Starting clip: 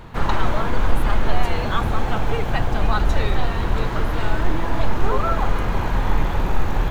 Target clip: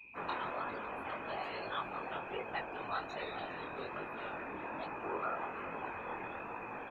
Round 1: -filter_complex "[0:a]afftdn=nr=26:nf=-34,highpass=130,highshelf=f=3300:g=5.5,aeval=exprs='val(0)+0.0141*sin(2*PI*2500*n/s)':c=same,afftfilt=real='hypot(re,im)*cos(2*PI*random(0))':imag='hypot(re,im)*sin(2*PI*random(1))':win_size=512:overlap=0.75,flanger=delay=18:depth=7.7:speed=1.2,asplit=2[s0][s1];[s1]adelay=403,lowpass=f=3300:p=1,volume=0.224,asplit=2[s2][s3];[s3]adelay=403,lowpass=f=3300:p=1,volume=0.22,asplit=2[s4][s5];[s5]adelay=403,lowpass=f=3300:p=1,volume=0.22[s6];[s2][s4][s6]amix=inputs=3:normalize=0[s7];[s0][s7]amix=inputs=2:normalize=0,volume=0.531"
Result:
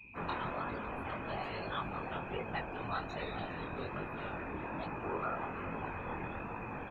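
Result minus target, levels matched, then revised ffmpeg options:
125 Hz band +10.0 dB
-filter_complex "[0:a]afftdn=nr=26:nf=-34,highpass=330,highshelf=f=3300:g=5.5,aeval=exprs='val(0)+0.0141*sin(2*PI*2500*n/s)':c=same,afftfilt=real='hypot(re,im)*cos(2*PI*random(0))':imag='hypot(re,im)*sin(2*PI*random(1))':win_size=512:overlap=0.75,flanger=delay=18:depth=7.7:speed=1.2,asplit=2[s0][s1];[s1]adelay=403,lowpass=f=3300:p=1,volume=0.224,asplit=2[s2][s3];[s3]adelay=403,lowpass=f=3300:p=1,volume=0.22,asplit=2[s4][s5];[s5]adelay=403,lowpass=f=3300:p=1,volume=0.22[s6];[s2][s4][s6]amix=inputs=3:normalize=0[s7];[s0][s7]amix=inputs=2:normalize=0,volume=0.531"

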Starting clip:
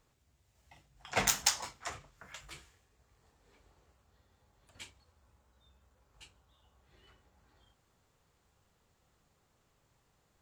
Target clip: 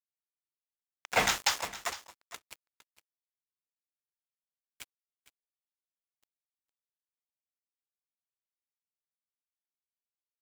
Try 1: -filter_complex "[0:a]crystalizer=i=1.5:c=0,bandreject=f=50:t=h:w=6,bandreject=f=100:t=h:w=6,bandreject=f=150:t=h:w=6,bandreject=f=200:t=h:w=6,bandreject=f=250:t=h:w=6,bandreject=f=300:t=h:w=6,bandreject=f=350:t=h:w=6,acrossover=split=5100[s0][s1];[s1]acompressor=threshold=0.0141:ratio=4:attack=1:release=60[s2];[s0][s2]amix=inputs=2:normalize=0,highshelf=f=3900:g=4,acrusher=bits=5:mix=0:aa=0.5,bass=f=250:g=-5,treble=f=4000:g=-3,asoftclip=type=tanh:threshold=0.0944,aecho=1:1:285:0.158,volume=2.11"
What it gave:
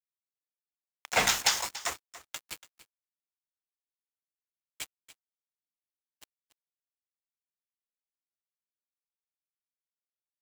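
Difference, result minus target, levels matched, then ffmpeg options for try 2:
echo 173 ms early; 8 kHz band +3.0 dB
-filter_complex "[0:a]crystalizer=i=1.5:c=0,bandreject=f=50:t=h:w=6,bandreject=f=100:t=h:w=6,bandreject=f=150:t=h:w=6,bandreject=f=200:t=h:w=6,bandreject=f=250:t=h:w=6,bandreject=f=300:t=h:w=6,bandreject=f=350:t=h:w=6,acrossover=split=5100[s0][s1];[s1]acompressor=threshold=0.0141:ratio=4:attack=1:release=60[s2];[s0][s2]amix=inputs=2:normalize=0,highshelf=f=3900:g=-3.5,acrusher=bits=5:mix=0:aa=0.5,bass=f=250:g=-5,treble=f=4000:g=-3,asoftclip=type=tanh:threshold=0.0944,aecho=1:1:458:0.158,volume=2.11"

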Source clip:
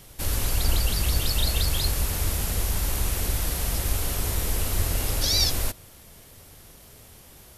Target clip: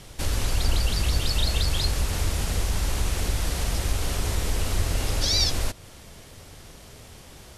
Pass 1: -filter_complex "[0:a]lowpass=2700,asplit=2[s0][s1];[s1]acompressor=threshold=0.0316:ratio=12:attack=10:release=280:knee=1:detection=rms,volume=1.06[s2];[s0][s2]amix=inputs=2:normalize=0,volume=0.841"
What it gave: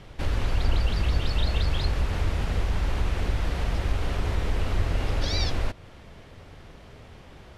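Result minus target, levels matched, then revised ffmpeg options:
8 kHz band -13.0 dB
-filter_complex "[0:a]lowpass=7800,asplit=2[s0][s1];[s1]acompressor=threshold=0.0316:ratio=12:attack=10:release=280:knee=1:detection=rms,volume=1.06[s2];[s0][s2]amix=inputs=2:normalize=0,volume=0.841"

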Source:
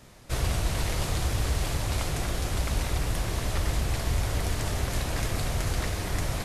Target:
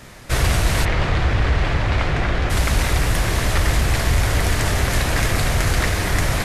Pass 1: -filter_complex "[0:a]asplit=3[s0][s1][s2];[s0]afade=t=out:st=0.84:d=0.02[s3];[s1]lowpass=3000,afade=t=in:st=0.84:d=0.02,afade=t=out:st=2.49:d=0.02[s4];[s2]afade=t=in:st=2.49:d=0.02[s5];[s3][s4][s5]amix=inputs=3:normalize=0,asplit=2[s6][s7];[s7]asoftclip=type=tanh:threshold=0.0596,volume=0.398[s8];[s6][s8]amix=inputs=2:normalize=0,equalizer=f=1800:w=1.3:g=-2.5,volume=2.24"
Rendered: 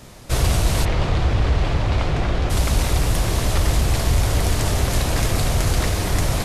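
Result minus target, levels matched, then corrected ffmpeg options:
2 kHz band -5.5 dB
-filter_complex "[0:a]asplit=3[s0][s1][s2];[s0]afade=t=out:st=0.84:d=0.02[s3];[s1]lowpass=3000,afade=t=in:st=0.84:d=0.02,afade=t=out:st=2.49:d=0.02[s4];[s2]afade=t=in:st=2.49:d=0.02[s5];[s3][s4][s5]amix=inputs=3:normalize=0,asplit=2[s6][s7];[s7]asoftclip=type=tanh:threshold=0.0596,volume=0.398[s8];[s6][s8]amix=inputs=2:normalize=0,equalizer=f=1800:w=1.3:g=5.5,volume=2.24"

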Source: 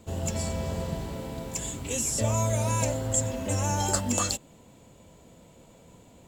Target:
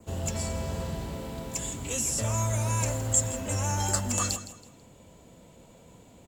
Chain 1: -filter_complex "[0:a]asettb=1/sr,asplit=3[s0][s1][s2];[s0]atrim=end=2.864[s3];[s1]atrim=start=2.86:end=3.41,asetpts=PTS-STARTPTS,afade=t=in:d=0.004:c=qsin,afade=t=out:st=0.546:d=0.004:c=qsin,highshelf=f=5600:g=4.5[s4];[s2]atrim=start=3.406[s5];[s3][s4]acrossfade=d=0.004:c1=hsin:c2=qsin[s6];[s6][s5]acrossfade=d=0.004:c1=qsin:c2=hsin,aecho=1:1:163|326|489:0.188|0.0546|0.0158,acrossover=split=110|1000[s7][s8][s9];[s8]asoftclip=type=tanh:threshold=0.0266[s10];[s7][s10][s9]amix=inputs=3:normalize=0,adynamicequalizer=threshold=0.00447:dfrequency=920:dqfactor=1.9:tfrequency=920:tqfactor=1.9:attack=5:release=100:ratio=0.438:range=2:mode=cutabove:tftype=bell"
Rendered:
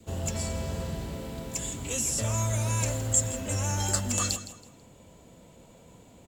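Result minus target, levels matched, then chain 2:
1 kHz band -2.5 dB
-filter_complex "[0:a]asettb=1/sr,asplit=3[s0][s1][s2];[s0]atrim=end=2.864[s3];[s1]atrim=start=2.86:end=3.41,asetpts=PTS-STARTPTS,afade=t=in:d=0.004:c=qsin,afade=t=out:st=0.546:d=0.004:c=qsin,highshelf=f=5600:g=4.5[s4];[s2]atrim=start=3.406[s5];[s3][s4]acrossfade=d=0.004:c1=hsin:c2=qsin[s6];[s6][s5]acrossfade=d=0.004:c1=qsin:c2=hsin,aecho=1:1:163|326|489:0.188|0.0546|0.0158,acrossover=split=110|1000[s7][s8][s9];[s8]asoftclip=type=tanh:threshold=0.0266[s10];[s7][s10][s9]amix=inputs=3:normalize=0,adynamicequalizer=threshold=0.00447:dfrequency=3600:dqfactor=1.9:tfrequency=3600:tqfactor=1.9:attack=5:release=100:ratio=0.438:range=2:mode=cutabove:tftype=bell"

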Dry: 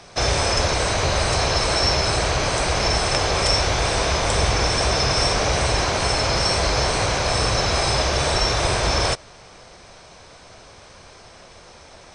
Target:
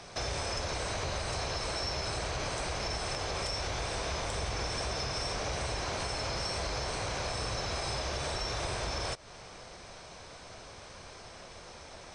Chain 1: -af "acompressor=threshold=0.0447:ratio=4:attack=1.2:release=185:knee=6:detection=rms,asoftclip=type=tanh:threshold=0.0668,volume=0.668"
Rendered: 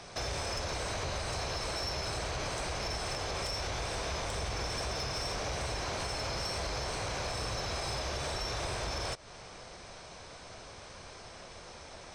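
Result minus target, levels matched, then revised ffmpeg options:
saturation: distortion +15 dB
-af "acompressor=threshold=0.0447:ratio=4:attack=1.2:release=185:knee=6:detection=rms,asoftclip=type=tanh:threshold=0.178,volume=0.668"

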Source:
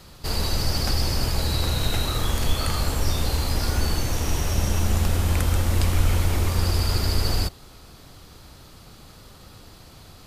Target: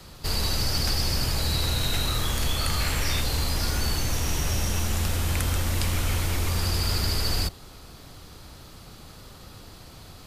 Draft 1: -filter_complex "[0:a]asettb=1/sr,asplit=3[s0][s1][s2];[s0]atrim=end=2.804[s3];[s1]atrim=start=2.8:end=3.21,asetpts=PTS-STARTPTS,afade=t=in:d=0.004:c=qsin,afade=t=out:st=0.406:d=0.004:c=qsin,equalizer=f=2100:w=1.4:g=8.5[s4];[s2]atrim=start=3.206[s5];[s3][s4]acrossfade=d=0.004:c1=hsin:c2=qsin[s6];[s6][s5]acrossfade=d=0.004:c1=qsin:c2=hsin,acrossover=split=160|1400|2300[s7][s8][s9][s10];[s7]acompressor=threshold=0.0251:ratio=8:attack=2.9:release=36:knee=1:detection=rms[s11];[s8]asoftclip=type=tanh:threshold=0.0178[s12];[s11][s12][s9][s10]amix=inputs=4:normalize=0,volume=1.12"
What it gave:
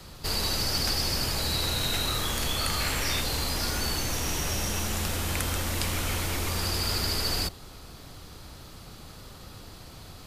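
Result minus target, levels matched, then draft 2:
compression: peak gain reduction +7 dB
-filter_complex "[0:a]asettb=1/sr,asplit=3[s0][s1][s2];[s0]atrim=end=2.804[s3];[s1]atrim=start=2.8:end=3.21,asetpts=PTS-STARTPTS,afade=t=in:d=0.004:c=qsin,afade=t=out:st=0.406:d=0.004:c=qsin,equalizer=f=2100:w=1.4:g=8.5[s4];[s2]atrim=start=3.206[s5];[s3][s4]acrossfade=d=0.004:c1=hsin:c2=qsin[s6];[s6][s5]acrossfade=d=0.004:c1=qsin:c2=hsin,acrossover=split=160|1400|2300[s7][s8][s9][s10];[s7]acompressor=threshold=0.0631:ratio=8:attack=2.9:release=36:knee=1:detection=rms[s11];[s8]asoftclip=type=tanh:threshold=0.0178[s12];[s11][s12][s9][s10]amix=inputs=4:normalize=0,volume=1.12"

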